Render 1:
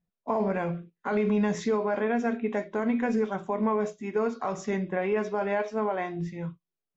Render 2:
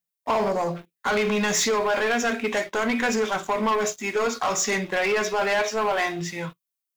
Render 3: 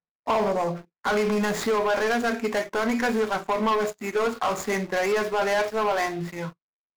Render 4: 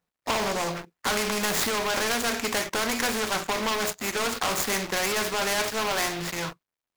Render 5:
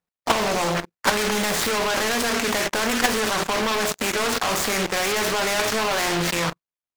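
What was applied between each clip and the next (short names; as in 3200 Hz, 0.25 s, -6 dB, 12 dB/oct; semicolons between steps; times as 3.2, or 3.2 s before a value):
spectral gain 0.49–0.76, 1200–3800 Hz -27 dB; tilt +4.5 dB/oct; sample leveller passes 3
median filter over 15 samples
spectral compressor 2:1; gain +6 dB
level quantiser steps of 12 dB; sample leveller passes 3; Doppler distortion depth 0.46 ms; gain +2.5 dB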